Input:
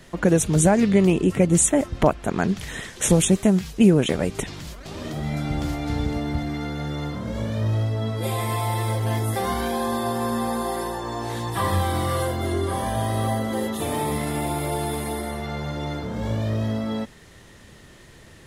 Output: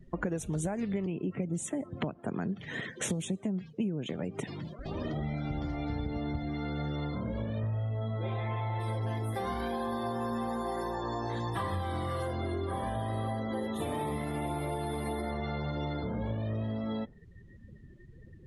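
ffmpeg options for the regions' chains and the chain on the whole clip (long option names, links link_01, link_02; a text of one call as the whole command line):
ffmpeg -i in.wav -filter_complex "[0:a]asettb=1/sr,asplit=3[link_01][link_02][link_03];[link_01]atrim=end=1.064[link_04];[link_02]atrim=start=1.06:end=4.79,asetpts=PTS-STARTPTS,afade=type=in:duration=0.004:curve=qsin,afade=type=out:start_time=3.726:duration=0.004:curve=qsin,highpass=frequency=110:width=0.5412,highpass=frequency=110:width=1.3066,acrossover=split=330|3000[link_05][link_06][link_07];[link_06]acompressor=threshold=-32dB:ratio=2:attack=3.2:release=140:knee=2.83:detection=peak[link_08];[link_05][link_08][link_07]amix=inputs=3:normalize=0,highshelf=frequency=6600:gain=-6.5[link_09];[link_03]atrim=start=4.786[link_10];[link_04][link_09]acrossfade=duration=0.004:curve1=hsin:curve2=qsin[link_11];[link_11][link_10]acrossfade=duration=0.004:curve1=qsin:curve2=hsin,asettb=1/sr,asplit=3[link_12][link_13][link_14];[link_12]atrim=end=7.604[link_15];[link_13]atrim=start=7.6:end=8.8,asetpts=PTS-STARTPTS,afade=type=in:duration=0.004:curve=qsin,afade=type=out:start_time=1.196:duration=0.004:curve=qsin,lowpass=2100,aemphasis=mode=production:type=75fm,asplit=2[link_16][link_17];[link_17]adelay=35,volume=-4dB[link_18];[link_16][link_18]amix=inputs=2:normalize=0,atrim=end_sample=52920[link_19];[link_14]atrim=start=8.796[link_20];[link_15][link_19]acrossfade=duration=0.004:curve1=hsin:curve2=qsin[link_21];[link_21][link_20]acrossfade=duration=0.004:curve1=qsin:curve2=hsin,afftdn=noise_reduction=28:noise_floor=-40,highshelf=frequency=6400:gain=-7,acompressor=threshold=-31dB:ratio=6" out.wav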